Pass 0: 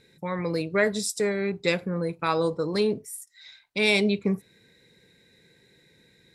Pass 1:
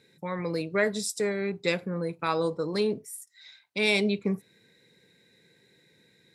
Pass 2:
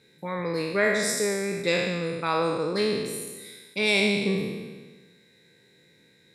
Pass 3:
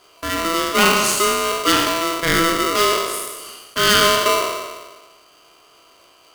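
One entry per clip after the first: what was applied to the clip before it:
high-pass filter 110 Hz; level −2.5 dB
peak hold with a decay on every bin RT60 1.39 s
ring modulator with a square carrier 830 Hz; level +8 dB

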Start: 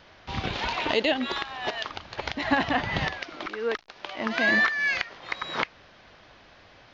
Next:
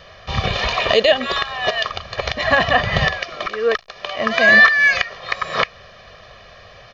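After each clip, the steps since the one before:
comb filter 1.7 ms, depth 85%
level +7.5 dB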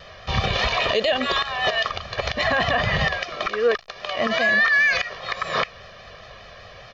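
brickwall limiter −11.5 dBFS, peak gain reduction 10.5 dB
pitch vibrato 5 Hz 45 cents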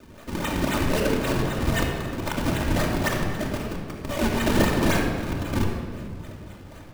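auto-filter high-pass square 2.8 Hz 220–3,500 Hz
sample-and-hold swept by an LFO 40×, swing 160% 3.8 Hz
rectangular room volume 3,100 cubic metres, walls mixed, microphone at 2.6 metres
level −5.5 dB

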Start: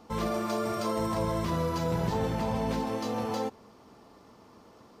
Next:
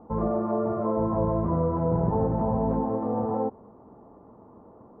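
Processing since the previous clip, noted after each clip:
low-pass filter 1,000 Hz 24 dB per octave
level +5 dB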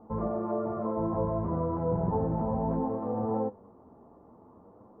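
flanger 0.6 Hz, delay 8.9 ms, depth 4.3 ms, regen +60%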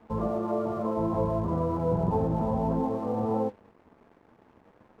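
dead-zone distortion −56.5 dBFS
level +2.5 dB

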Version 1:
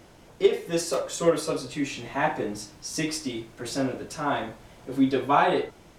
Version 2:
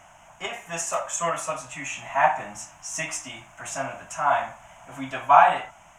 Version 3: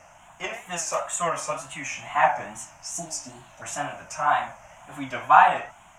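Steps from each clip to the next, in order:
drawn EQ curve 180 Hz 0 dB, 450 Hz −17 dB, 650 Hz +13 dB, 990 Hz +14 dB, 1,900 Hz +10 dB, 2,900 Hz +11 dB, 4,400 Hz −13 dB, 6,600 Hz +15 dB, 11,000 Hz +2 dB; level −6.5 dB
healed spectral selection 0:02.96–0:03.59, 940–4,400 Hz before; tape wow and flutter 120 cents

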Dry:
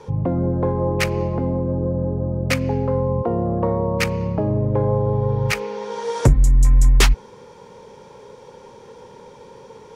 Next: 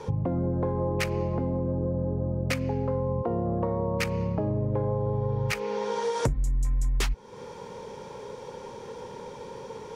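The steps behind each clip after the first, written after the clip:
downward compressor 4 to 1, threshold −28 dBFS, peak gain reduction 16.5 dB
level +2 dB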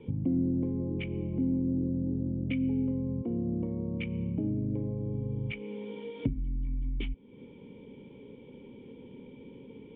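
formant resonators in series i
level +6 dB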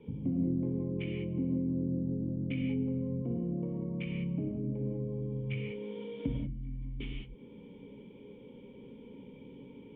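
reverb whose tail is shaped and stops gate 220 ms flat, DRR −1.5 dB
level −5.5 dB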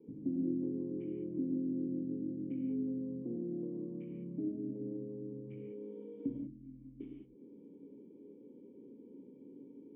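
resonant band-pass 320 Hz, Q 3.9
level +3 dB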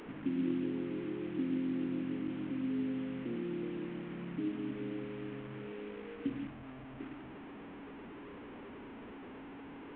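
linear delta modulator 16 kbit/s, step −43.5 dBFS
level +1 dB

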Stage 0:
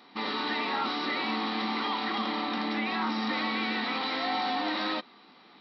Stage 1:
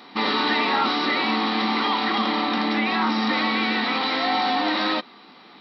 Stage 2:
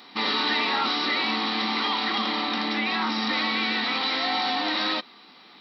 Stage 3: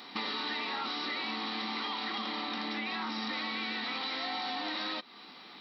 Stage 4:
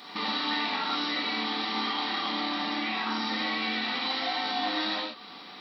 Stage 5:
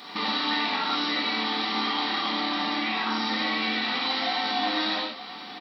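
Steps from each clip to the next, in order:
speech leveller 2 s; level +8 dB
high-shelf EQ 2,300 Hz +9 dB; level −6 dB
downward compressor 4 to 1, threshold −35 dBFS, peak gain reduction 11.5 dB
reverb whose tail is shaped and stops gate 160 ms flat, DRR −4 dB
single-tap delay 923 ms −15.5 dB; level +3 dB

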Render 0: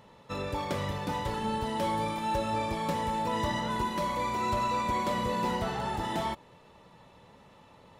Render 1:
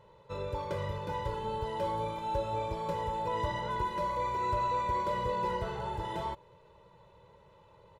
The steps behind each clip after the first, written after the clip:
high-shelf EQ 2,400 Hz −10.5 dB
comb filter 2 ms, depth 94%
level −5 dB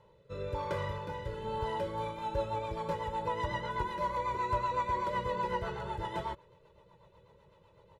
rotating-speaker cabinet horn 1 Hz, later 8 Hz, at 0:01.59
dynamic equaliser 1,500 Hz, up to +5 dB, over −52 dBFS, Q 0.93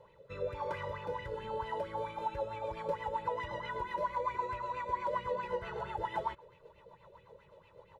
downward compressor 2.5 to 1, threshold −41 dBFS, peak gain reduction 10 dB
auto-filter bell 4.5 Hz 470–2,600 Hz +14 dB
level −2 dB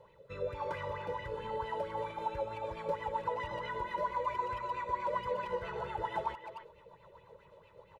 far-end echo of a speakerphone 300 ms, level −9 dB

